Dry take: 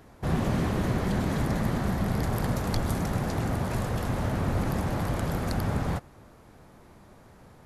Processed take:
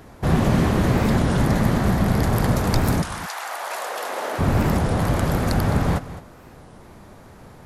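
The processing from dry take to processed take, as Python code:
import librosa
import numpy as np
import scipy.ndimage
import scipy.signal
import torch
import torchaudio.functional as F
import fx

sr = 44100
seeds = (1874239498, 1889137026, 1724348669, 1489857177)

y = fx.highpass(x, sr, hz=fx.line((3.04, 1100.0), (4.38, 370.0)), slope=24, at=(3.04, 4.38), fade=0.02)
y = y + 10.0 ** (-14.5 / 20.0) * np.pad(y, (int(211 * sr / 1000.0), 0))[:len(y)]
y = fx.record_warp(y, sr, rpm=33.33, depth_cents=250.0)
y = y * 10.0 ** (8.0 / 20.0)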